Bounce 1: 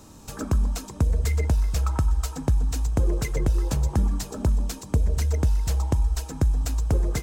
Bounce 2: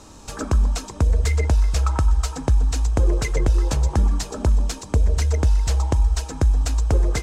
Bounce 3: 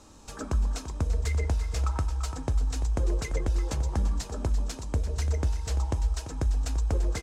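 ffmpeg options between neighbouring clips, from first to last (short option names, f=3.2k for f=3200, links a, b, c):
-af "lowpass=8.3k,equalizer=f=160:w=0.77:g=-7,volume=6dB"
-af "flanger=delay=3.6:depth=7.3:regen=-77:speed=0.28:shape=sinusoidal,aecho=1:1:341:0.266,volume=-4dB"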